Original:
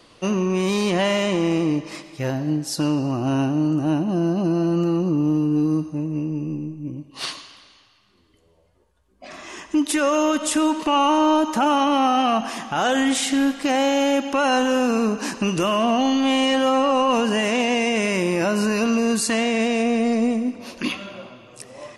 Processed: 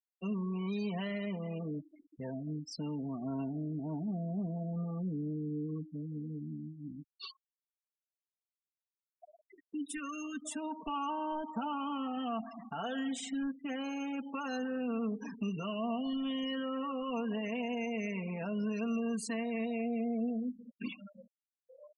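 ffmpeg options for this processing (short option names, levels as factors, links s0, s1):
-filter_complex "[0:a]asplit=3[s0][s1][s2];[s0]afade=t=out:st=9.63:d=0.02[s3];[s1]asuperstop=centerf=740:order=4:qfactor=1,afade=t=in:st=9.63:d=0.02,afade=t=out:st=10.44:d=0.02[s4];[s2]afade=t=in:st=10.44:d=0.02[s5];[s3][s4][s5]amix=inputs=3:normalize=0,afftfilt=real='re*gte(hypot(re,im),0.0794)':imag='im*gte(hypot(re,im),0.0794)':win_size=1024:overlap=0.75,aecho=1:1:4.4:0.91,acrossover=split=130[s6][s7];[s7]acompressor=threshold=0.00355:ratio=1.5[s8];[s6][s8]amix=inputs=2:normalize=0,volume=0.376"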